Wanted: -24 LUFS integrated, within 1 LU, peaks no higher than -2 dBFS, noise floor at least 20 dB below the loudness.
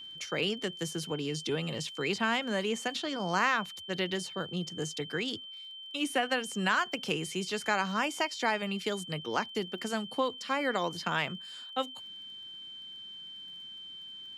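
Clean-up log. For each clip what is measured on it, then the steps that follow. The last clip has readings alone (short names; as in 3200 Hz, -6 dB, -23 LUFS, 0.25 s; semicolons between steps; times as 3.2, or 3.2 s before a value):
ticks 21/s; steady tone 3100 Hz; tone level -43 dBFS; loudness -33.0 LUFS; peak -14.5 dBFS; loudness target -24.0 LUFS
-> de-click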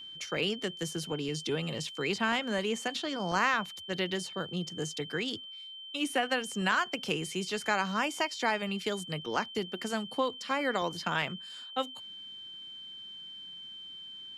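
ticks 0/s; steady tone 3100 Hz; tone level -43 dBFS
-> notch 3100 Hz, Q 30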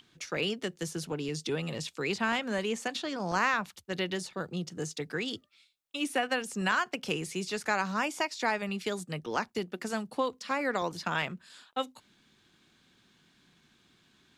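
steady tone none; loudness -32.5 LUFS; peak -15.0 dBFS; loudness target -24.0 LUFS
-> gain +8.5 dB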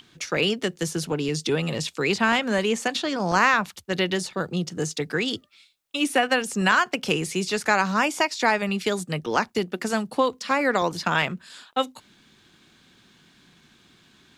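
loudness -24.0 LUFS; peak -6.5 dBFS; noise floor -58 dBFS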